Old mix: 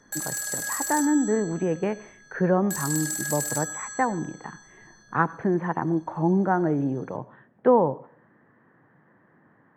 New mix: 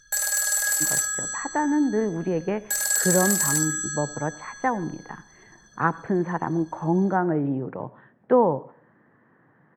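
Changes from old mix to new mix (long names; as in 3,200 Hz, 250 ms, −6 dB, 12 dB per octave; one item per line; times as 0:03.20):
speech: entry +0.65 s
background +7.0 dB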